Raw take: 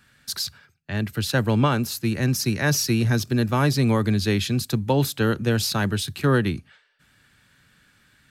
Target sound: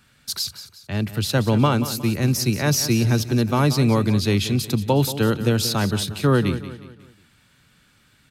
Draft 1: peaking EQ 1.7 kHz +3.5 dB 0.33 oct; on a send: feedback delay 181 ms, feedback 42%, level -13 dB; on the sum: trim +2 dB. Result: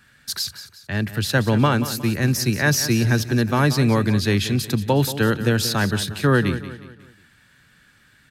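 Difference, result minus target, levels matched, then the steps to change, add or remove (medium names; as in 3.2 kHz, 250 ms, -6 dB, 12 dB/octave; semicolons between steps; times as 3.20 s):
2 kHz band +5.5 dB
change: peaking EQ 1.7 kHz -7.5 dB 0.33 oct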